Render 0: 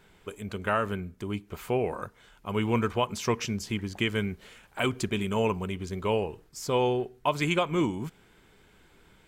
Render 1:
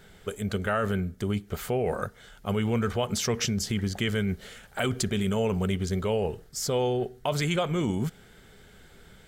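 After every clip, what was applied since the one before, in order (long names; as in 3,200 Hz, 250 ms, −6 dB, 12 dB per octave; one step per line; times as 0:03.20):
thirty-one-band graphic EQ 315 Hz −9 dB, 1,000 Hz −12 dB, 2,500 Hz −8 dB
in parallel at −1 dB: compressor whose output falls as the input rises −33 dBFS, ratio −0.5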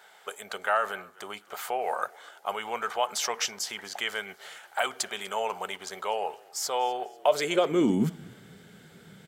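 echo with shifted repeats 247 ms, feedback 41%, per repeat −36 Hz, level −23 dB
high-pass filter sweep 820 Hz → 160 Hz, 0:07.05–0:08.23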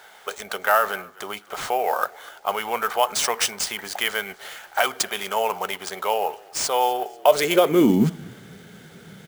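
sample-rate reduction 14,000 Hz, jitter 0%
level +7 dB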